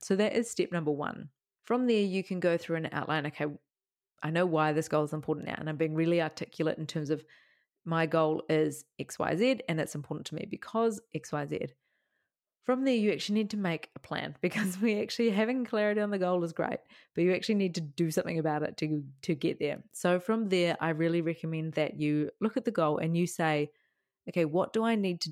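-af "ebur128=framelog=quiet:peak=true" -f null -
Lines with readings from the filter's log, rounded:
Integrated loudness:
  I:         -31.1 LUFS
  Threshold: -41.3 LUFS
Loudness range:
  LRA:         2.8 LU
  Threshold: -51.5 LUFS
  LRA low:   -33.1 LUFS
  LRA high:  -30.3 LUFS
True peak:
  Peak:      -14.1 dBFS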